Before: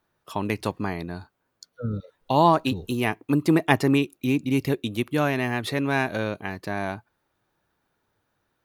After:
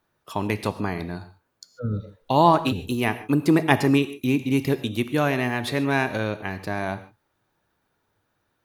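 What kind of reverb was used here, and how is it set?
gated-style reverb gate 170 ms flat, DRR 11.5 dB; trim +1 dB

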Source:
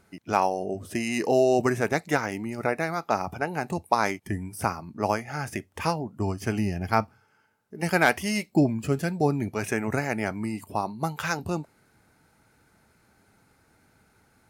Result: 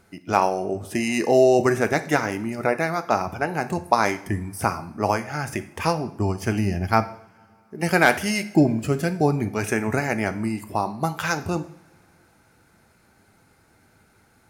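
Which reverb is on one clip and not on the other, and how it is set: two-slope reverb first 0.58 s, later 4.2 s, from -27 dB, DRR 10 dB; trim +3.5 dB

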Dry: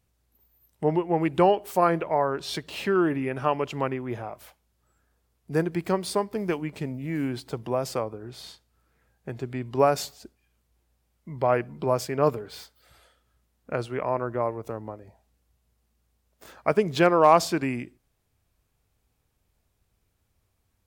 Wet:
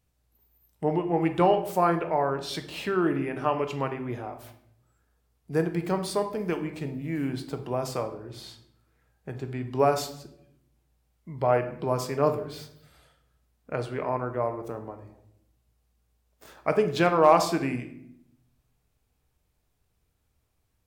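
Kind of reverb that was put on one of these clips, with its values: simulated room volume 170 m³, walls mixed, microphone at 0.46 m; trim -2.5 dB

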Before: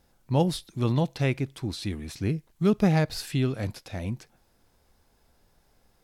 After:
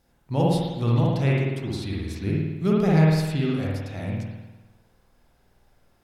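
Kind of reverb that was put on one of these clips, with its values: spring tank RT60 1.1 s, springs 51 ms, chirp 65 ms, DRR -4 dB; trim -2.5 dB

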